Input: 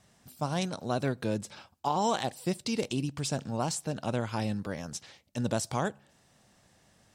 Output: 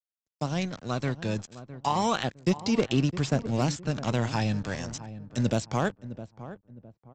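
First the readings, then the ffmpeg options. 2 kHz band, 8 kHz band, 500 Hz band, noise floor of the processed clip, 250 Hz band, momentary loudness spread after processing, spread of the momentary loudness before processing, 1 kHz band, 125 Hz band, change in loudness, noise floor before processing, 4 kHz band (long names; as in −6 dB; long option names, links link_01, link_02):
+4.5 dB, −2.0 dB, +2.5 dB, below −85 dBFS, +4.5 dB, 15 LU, 8 LU, +1.5 dB, +6.0 dB, +3.5 dB, −66 dBFS, +2.5 dB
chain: -filter_complex "[0:a]aresample=16000,aeval=exprs='sgn(val(0))*max(abs(val(0))-0.00562,0)':channel_layout=same,aresample=44100,agate=range=-18dB:threshold=-55dB:ratio=16:detection=peak,equalizer=frequency=900:width=2.5:gain=-3,acrossover=split=100|2800[link_01][link_02][link_03];[link_03]acompressor=threshold=-57dB:ratio=4[link_04];[link_01][link_02][link_04]amix=inputs=3:normalize=0,crystalizer=i=4:c=0,aphaser=in_gain=1:out_gain=1:delay=1.2:decay=0.32:speed=0.33:type=sinusoidal,dynaudnorm=framelen=200:gausssize=17:maxgain=4dB,volume=15dB,asoftclip=hard,volume=-15dB,lowshelf=frequency=110:gain=4.5,asplit=2[link_05][link_06];[link_06]adelay=660,lowpass=frequency=980:poles=1,volume=-13dB,asplit=2[link_07][link_08];[link_08]adelay=660,lowpass=frequency=980:poles=1,volume=0.35,asplit=2[link_09][link_10];[link_10]adelay=660,lowpass=frequency=980:poles=1,volume=0.35[link_11];[link_05][link_07][link_09][link_11]amix=inputs=4:normalize=0"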